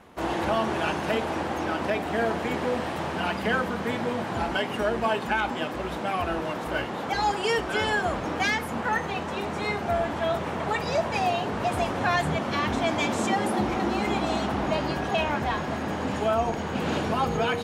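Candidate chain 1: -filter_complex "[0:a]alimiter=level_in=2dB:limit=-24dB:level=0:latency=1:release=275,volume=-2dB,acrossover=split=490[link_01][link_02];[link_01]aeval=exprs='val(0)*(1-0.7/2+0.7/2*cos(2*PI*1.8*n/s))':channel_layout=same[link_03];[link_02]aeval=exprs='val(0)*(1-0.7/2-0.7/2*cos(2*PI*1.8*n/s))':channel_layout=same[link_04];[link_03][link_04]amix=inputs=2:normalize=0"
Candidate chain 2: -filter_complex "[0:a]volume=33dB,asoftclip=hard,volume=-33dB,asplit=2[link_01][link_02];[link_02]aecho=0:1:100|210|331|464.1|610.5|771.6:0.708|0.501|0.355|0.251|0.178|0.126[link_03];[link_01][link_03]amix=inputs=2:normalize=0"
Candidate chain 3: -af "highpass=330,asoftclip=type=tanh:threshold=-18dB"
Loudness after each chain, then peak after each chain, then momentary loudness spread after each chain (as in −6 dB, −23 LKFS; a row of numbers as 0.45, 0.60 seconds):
−38.5, −31.5, −29.0 LKFS; −25.0, −23.0, −18.5 dBFS; 2, 1, 4 LU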